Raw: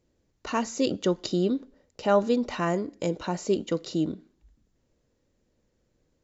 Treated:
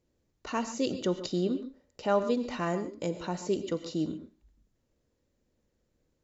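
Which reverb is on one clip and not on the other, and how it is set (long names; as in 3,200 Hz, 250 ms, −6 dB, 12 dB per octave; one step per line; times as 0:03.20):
reverb whose tail is shaped and stops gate 160 ms rising, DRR 11 dB
level −4.5 dB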